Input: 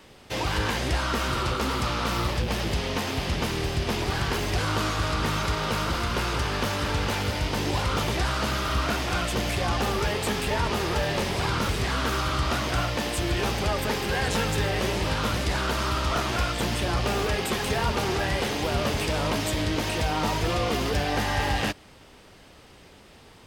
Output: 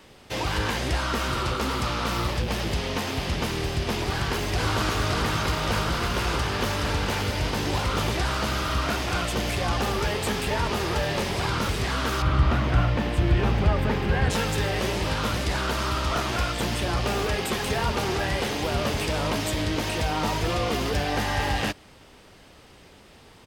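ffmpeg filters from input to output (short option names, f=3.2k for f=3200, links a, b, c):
-filter_complex "[0:a]asplit=2[a][b];[b]afade=t=in:st=4.02:d=0.01,afade=t=out:st=4.65:d=0.01,aecho=0:1:570|1140|1710|2280|2850|3420|3990|4560|5130|5700|6270|6840:0.707946|0.601754|0.511491|0.434767|0.369552|0.314119|0.267001|0.226951|0.192909|0.163972|0.139376|0.11847[c];[a][c]amix=inputs=2:normalize=0,asettb=1/sr,asplit=3[d][e][f];[d]atrim=end=12.224[g];[e]atrim=start=12.22:end=14.3,asetpts=PTS-STARTPTS,afade=t=in:d=0.004:c=qsin,afade=t=out:st=2.076:d=0.004:c=qsin,bass=f=250:g=8,treble=f=4k:g=-14[h];[f]atrim=start=14.296[i];[g][h]acrossfade=d=0.004:c1=hsin:c2=qsin[j];[j][i]acrossfade=d=0.004:c1=qsin:c2=hsin"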